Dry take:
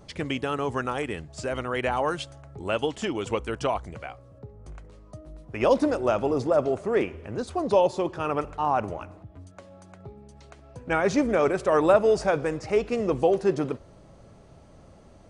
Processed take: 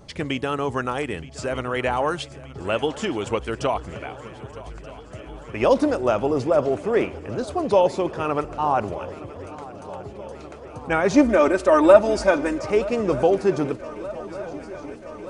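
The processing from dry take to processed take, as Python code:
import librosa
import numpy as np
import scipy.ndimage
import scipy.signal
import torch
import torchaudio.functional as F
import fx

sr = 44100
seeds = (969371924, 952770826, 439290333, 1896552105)

y = fx.comb(x, sr, ms=3.3, depth=0.8, at=(11.14, 12.6))
y = fx.echo_swing(y, sr, ms=1228, ratio=3, feedback_pct=72, wet_db=-19.0)
y = F.gain(torch.from_numpy(y), 3.0).numpy()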